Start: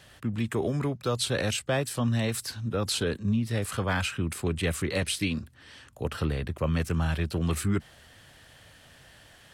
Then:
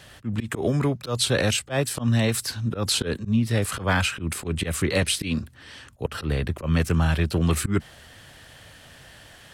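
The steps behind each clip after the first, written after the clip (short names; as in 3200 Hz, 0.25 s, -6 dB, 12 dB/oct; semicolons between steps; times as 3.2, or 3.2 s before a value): auto swell 0.106 s; gain +6 dB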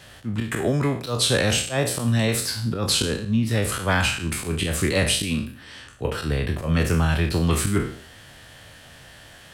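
spectral trails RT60 0.51 s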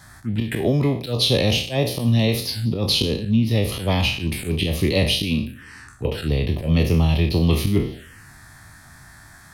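envelope phaser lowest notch 460 Hz, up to 1500 Hz, full sweep at -21.5 dBFS; gain +3.5 dB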